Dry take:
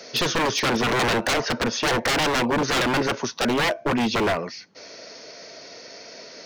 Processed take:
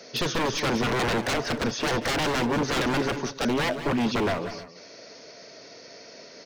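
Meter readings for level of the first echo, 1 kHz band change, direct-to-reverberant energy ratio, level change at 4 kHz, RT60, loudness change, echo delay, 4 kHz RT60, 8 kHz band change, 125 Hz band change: -13.5 dB, -4.5 dB, no reverb, -5.0 dB, no reverb, -3.5 dB, 183 ms, no reverb, -5.0 dB, -0.5 dB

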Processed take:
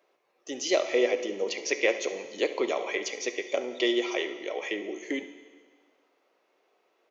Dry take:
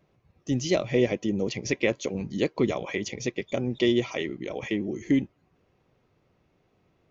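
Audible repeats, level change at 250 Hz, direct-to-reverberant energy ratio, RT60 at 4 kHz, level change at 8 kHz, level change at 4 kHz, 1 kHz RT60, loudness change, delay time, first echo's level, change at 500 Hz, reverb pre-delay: 1, -7.5 dB, 8.5 dB, 1.6 s, no reading, +2.0 dB, 1.6 s, -1.5 dB, 70 ms, -15.5 dB, 0.0 dB, 14 ms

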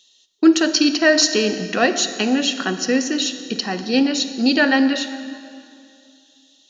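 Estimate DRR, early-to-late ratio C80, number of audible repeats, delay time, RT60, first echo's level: 10.5 dB, 11.5 dB, no echo, no echo, 2.4 s, no echo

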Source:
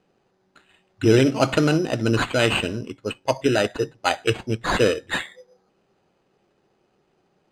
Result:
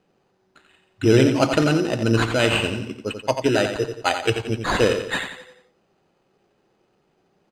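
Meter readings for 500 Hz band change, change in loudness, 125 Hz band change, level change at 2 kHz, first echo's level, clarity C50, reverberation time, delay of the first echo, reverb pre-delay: +0.5 dB, +1.0 dB, +1.0 dB, +1.0 dB, -8.0 dB, no reverb, no reverb, 88 ms, no reverb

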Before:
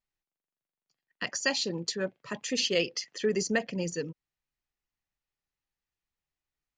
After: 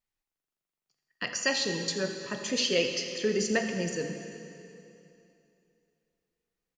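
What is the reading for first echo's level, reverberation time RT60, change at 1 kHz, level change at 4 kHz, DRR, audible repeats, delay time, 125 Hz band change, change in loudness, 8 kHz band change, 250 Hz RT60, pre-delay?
-15.5 dB, 2.8 s, +1.5 dB, +1.5 dB, 4.5 dB, 1, 83 ms, +1.0 dB, +1.0 dB, +1.5 dB, 2.9 s, 7 ms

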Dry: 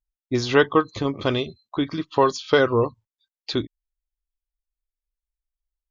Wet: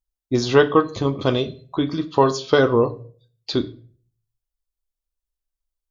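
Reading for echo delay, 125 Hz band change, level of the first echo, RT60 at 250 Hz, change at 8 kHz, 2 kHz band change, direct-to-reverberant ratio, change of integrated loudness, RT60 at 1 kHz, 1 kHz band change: no echo, +4.0 dB, no echo, 0.55 s, no reading, -0.5 dB, 9.0 dB, +2.5 dB, 0.40 s, +1.5 dB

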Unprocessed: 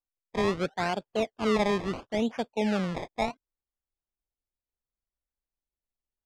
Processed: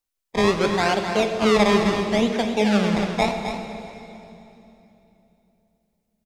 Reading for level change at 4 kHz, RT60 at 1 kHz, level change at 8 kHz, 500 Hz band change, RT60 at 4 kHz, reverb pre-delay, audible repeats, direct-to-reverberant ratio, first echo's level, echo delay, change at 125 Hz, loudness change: +11.0 dB, 2.8 s, +12.0 dB, +8.5 dB, 2.7 s, 20 ms, 1, 3.5 dB, -8.0 dB, 262 ms, +8.5 dB, +8.5 dB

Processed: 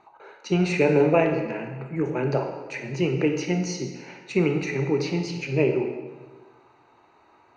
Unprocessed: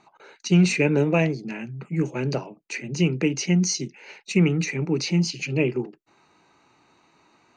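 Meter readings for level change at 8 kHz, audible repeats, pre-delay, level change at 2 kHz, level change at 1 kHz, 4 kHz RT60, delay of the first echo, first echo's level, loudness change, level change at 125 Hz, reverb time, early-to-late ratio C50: -10.0 dB, no echo, 24 ms, -1.5 dB, +5.5 dB, 1.1 s, no echo, no echo, -1.5 dB, -4.0 dB, 1.4 s, 5.5 dB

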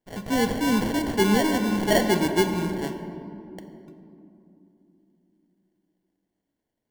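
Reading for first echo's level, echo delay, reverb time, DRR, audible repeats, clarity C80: no echo, no echo, 3.0 s, 6.0 dB, no echo, 8.5 dB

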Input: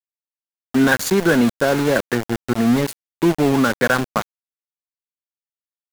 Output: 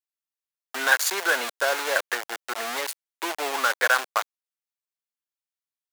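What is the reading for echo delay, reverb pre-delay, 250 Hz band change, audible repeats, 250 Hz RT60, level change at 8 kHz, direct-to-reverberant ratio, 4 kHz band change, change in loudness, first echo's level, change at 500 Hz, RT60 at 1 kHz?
no echo, no reverb, -26.0 dB, no echo, no reverb, 0.0 dB, no reverb, 0.0 dB, -6.5 dB, no echo, -10.5 dB, no reverb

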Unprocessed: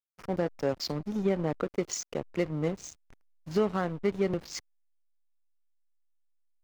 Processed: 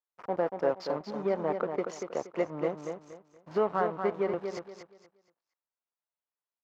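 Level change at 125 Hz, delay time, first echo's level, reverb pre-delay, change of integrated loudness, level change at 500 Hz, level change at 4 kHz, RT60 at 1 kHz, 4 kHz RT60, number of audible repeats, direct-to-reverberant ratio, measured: -9.0 dB, 236 ms, -6.5 dB, no reverb, -0.5 dB, +1.5 dB, -9.5 dB, no reverb, no reverb, 3, no reverb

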